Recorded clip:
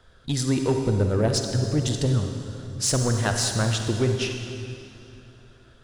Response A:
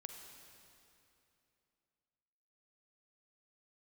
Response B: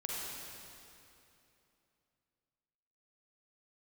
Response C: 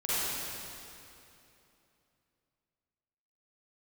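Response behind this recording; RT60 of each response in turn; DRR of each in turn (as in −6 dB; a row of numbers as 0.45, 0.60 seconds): A; 2.9, 2.9, 2.9 seconds; 4.0, −4.5, −12.5 decibels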